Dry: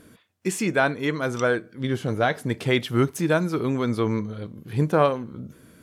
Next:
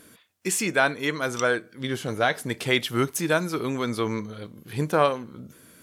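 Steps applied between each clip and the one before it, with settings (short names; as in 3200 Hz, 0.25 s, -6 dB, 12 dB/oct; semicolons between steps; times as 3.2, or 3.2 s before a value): tilt +2 dB/oct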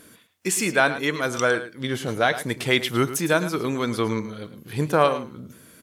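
echo 0.108 s -13 dB; gain +2 dB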